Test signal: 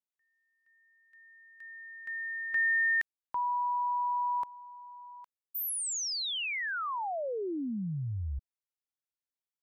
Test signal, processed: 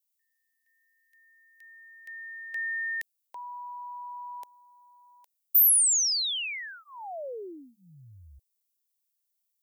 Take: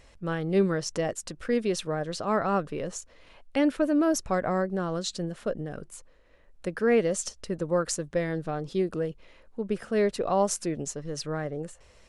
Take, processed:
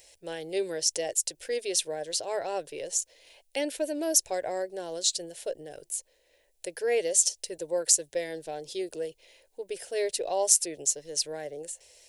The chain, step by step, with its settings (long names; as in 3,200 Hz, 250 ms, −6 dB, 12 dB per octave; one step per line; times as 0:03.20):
RIAA equalisation recording
phaser with its sweep stopped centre 510 Hz, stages 4